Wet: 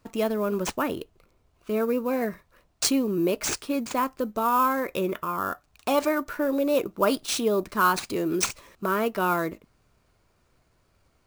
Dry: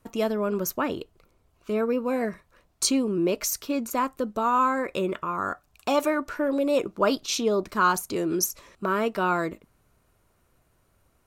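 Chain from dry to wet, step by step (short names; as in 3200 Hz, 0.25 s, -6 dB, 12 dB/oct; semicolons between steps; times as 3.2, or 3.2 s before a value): wow and flutter 17 cents; sample-rate reducer 14000 Hz, jitter 0%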